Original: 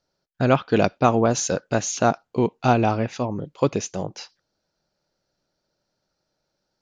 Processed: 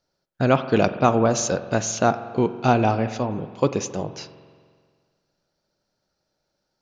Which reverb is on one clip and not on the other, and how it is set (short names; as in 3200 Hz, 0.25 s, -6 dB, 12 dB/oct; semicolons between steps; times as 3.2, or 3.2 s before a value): spring tank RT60 1.8 s, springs 45 ms, chirp 65 ms, DRR 11.5 dB